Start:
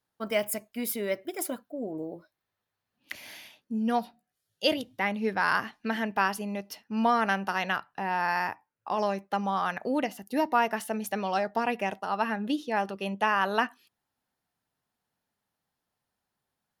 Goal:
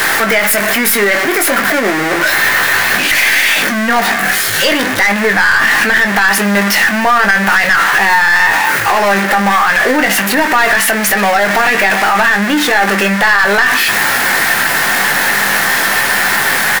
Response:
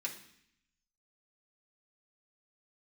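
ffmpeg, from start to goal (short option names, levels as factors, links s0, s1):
-filter_complex "[0:a]aeval=exprs='val(0)+0.5*0.0562*sgn(val(0))':c=same,highpass=f=390:p=1,equalizer=f=1800:t=o:w=0.71:g=12,aeval=exprs='(tanh(7.08*val(0)+0.3)-tanh(0.3))/7.08':c=same,asplit=2[s0][s1];[s1]adelay=20,volume=0.447[s2];[s0][s2]amix=inputs=2:normalize=0,asplit=2[s3][s4];[1:a]atrim=start_sample=2205,lowpass=2700[s5];[s4][s5]afir=irnorm=-1:irlink=0,volume=0.355[s6];[s3][s6]amix=inputs=2:normalize=0,alimiter=level_in=7.08:limit=0.891:release=50:level=0:latency=1,volume=0.891"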